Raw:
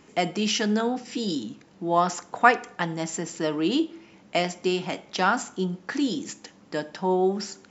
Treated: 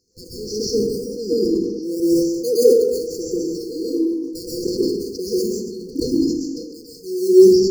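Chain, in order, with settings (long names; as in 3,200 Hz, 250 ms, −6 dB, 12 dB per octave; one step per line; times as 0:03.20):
Butterworth low-pass 6,400 Hz 36 dB per octave
auto-filter high-pass saw down 1.5 Hz 290–1,700 Hz
in parallel at −9 dB: sample-and-hold swept by an LFO 16×, swing 100% 0.71 Hz
on the sum: brick-wall band-stop 510–4,200 Hz
on a send: echo through a band-pass that steps 289 ms, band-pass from 250 Hz, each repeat 1.4 octaves, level −11.5 dB
on the sum: dense smooth reverb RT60 1.1 s, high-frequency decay 0.45×, pre-delay 110 ms, DRR −8.5 dB
level that may fall only so fast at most 44 dB per second
level −3.5 dB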